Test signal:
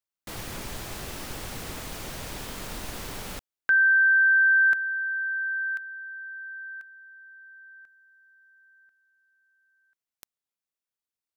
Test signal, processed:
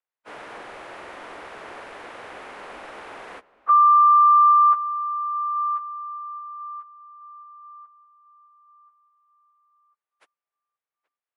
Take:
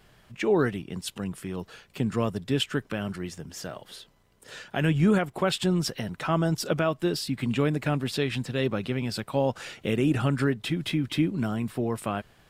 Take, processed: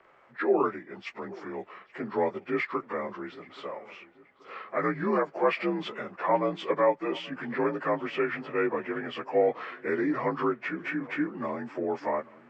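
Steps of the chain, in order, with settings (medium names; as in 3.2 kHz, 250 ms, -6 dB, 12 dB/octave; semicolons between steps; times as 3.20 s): frequency axis rescaled in octaves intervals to 85%; three-band isolator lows -24 dB, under 350 Hz, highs -23 dB, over 2.4 kHz; filtered feedback delay 828 ms, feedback 42%, low-pass 2.8 kHz, level -20.5 dB; trim +5.5 dB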